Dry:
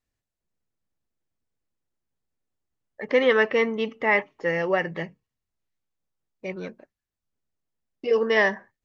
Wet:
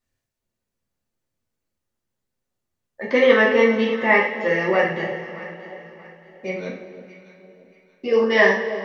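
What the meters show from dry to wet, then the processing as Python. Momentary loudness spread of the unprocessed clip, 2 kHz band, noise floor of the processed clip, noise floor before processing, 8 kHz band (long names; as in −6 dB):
18 LU, +5.5 dB, −82 dBFS, below −85 dBFS, can't be measured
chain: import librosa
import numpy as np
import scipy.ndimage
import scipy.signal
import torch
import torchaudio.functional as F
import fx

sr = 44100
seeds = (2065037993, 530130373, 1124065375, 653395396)

y = fx.echo_alternate(x, sr, ms=316, hz=810.0, feedback_pct=57, wet_db=-11.0)
y = fx.rev_double_slope(y, sr, seeds[0], early_s=0.47, late_s=3.6, knee_db=-18, drr_db=-4.0)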